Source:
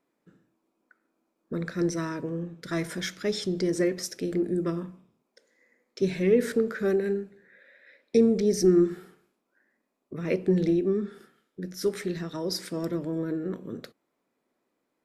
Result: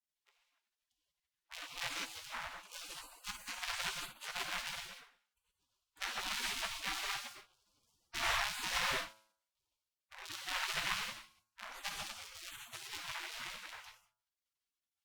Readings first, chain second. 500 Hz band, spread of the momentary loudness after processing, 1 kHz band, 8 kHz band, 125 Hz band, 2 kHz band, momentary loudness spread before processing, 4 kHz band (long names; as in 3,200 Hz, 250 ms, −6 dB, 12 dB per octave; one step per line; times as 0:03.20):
−28.5 dB, 15 LU, +2.0 dB, −3.5 dB, −26.5 dB, +1.0 dB, 14 LU, +1.0 dB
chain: sub-harmonics by changed cycles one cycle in 3, inverted
reverb whose tail is shaped and stops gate 220 ms flat, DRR −0.5 dB
gate on every frequency bin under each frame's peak −25 dB weak
parametric band 300 Hz +2.5 dB 0.83 octaves
hum removal 108.8 Hz, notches 15
brickwall limiter −18 dBFS, peak gain reduction 6.5 dB
low-pass filter 1,200 Hz 6 dB per octave
level +7.5 dB
Opus 64 kbit/s 48,000 Hz